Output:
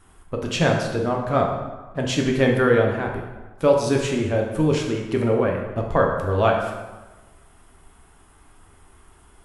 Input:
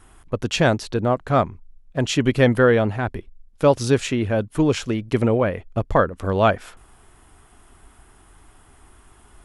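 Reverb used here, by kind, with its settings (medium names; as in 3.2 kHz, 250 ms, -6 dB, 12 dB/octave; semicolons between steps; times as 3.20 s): plate-style reverb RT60 1.2 s, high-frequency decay 0.7×, DRR 0 dB; trim -4 dB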